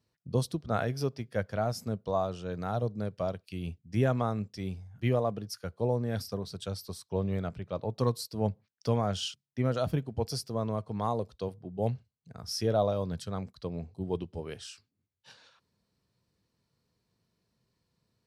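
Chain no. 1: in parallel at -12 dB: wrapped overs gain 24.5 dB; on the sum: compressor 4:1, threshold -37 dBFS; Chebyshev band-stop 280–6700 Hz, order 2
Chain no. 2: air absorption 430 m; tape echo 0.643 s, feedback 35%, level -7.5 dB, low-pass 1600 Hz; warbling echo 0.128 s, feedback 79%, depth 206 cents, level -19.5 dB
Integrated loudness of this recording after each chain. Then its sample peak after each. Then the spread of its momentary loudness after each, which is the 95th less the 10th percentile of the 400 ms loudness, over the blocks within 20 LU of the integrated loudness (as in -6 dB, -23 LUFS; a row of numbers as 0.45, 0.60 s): -44.0, -33.5 LUFS; -27.5, -14.0 dBFS; 5, 10 LU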